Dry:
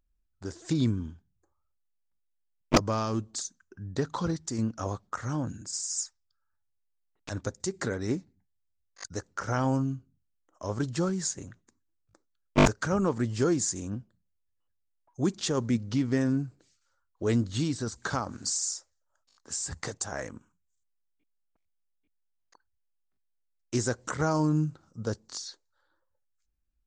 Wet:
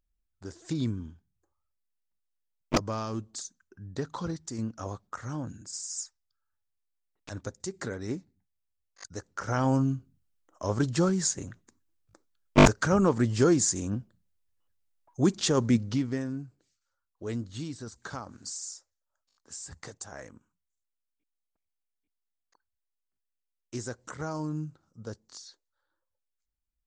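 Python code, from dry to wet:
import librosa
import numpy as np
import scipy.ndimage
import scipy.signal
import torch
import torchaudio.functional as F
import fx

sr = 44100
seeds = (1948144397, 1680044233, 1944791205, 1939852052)

y = fx.gain(x, sr, db=fx.line((9.13, -4.0), (9.88, 3.5), (15.8, 3.5), (16.28, -8.0)))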